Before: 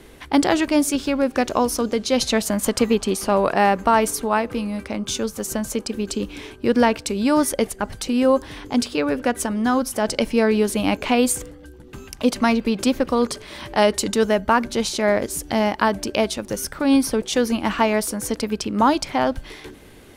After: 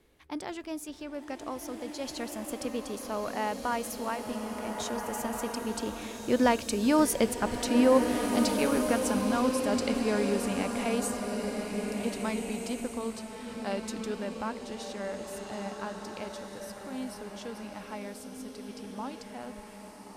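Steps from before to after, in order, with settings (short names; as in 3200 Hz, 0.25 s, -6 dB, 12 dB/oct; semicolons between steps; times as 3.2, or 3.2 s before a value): Doppler pass-by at 7.51, 20 m/s, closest 28 m; bloom reverb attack 1.73 s, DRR 3 dB; gain -5 dB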